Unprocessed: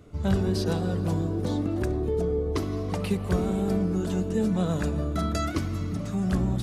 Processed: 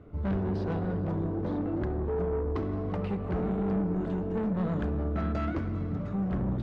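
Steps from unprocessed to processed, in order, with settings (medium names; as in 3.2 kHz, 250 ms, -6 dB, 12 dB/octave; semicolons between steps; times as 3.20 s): low-pass 1.7 kHz 12 dB/octave; saturation -26 dBFS, distortion -11 dB; on a send: reverberation RT60 3.5 s, pre-delay 3 ms, DRR 14.5 dB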